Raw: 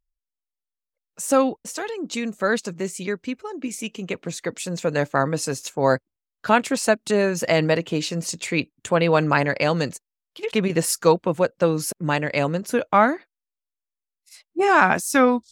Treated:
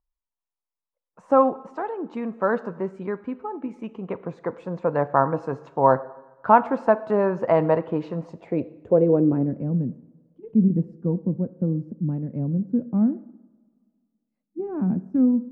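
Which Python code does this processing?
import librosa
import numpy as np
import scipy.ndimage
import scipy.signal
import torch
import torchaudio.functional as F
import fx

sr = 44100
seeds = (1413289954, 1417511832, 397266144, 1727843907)

y = fx.filter_sweep_lowpass(x, sr, from_hz=1000.0, to_hz=220.0, start_s=8.14, end_s=9.68, q=2.9)
y = fx.rev_double_slope(y, sr, seeds[0], early_s=0.84, late_s=2.3, knee_db=-18, drr_db=13.5)
y = y * 10.0 ** (-2.5 / 20.0)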